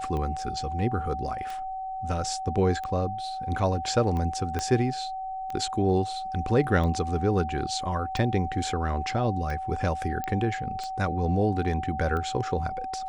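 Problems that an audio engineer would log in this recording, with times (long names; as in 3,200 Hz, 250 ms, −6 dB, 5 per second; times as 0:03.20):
scratch tick 45 rpm −22 dBFS
whistle 760 Hz −31 dBFS
0:04.59: click −15 dBFS
0:10.24: click −18 dBFS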